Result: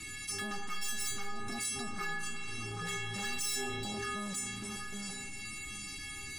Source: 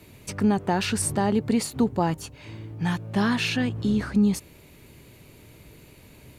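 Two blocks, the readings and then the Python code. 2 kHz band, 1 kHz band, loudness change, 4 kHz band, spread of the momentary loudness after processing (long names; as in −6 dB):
−4.5 dB, −11.5 dB, −12.5 dB, −4.5 dB, 7 LU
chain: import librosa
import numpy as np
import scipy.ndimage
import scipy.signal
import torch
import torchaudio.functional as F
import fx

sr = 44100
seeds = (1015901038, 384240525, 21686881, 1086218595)

p1 = fx.self_delay(x, sr, depth_ms=0.5)
p2 = fx.curve_eq(p1, sr, hz=(120.0, 300.0, 440.0, 1100.0, 2100.0), db=(0, 4, -29, -2, 1))
p3 = fx.echo_tape(p2, sr, ms=778, feedback_pct=24, wet_db=-13.5, lp_hz=1400.0, drive_db=6.0, wow_cents=37)
p4 = fx.quant_dither(p3, sr, seeds[0], bits=6, dither='none')
p5 = p3 + F.gain(torch.from_numpy(p4), -5.0).numpy()
p6 = scipy.signal.sosfilt(scipy.signal.butter(8, 10000.0, 'lowpass', fs=sr, output='sos'), p5)
p7 = fx.rev_spring(p6, sr, rt60_s=1.5, pass_ms=(36,), chirp_ms=70, drr_db=6.5)
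p8 = 10.0 ** (-20.5 / 20.0) * np.tanh(p7 / 10.0 ** (-20.5 / 20.0))
p9 = fx.high_shelf(p8, sr, hz=7000.0, db=10.0)
p10 = fx.stiff_resonator(p9, sr, f0_hz=400.0, decay_s=0.71, stiffness=0.008)
p11 = fx.env_flatten(p10, sr, amount_pct=70)
y = F.gain(torch.from_numpy(p11), 7.0).numpy()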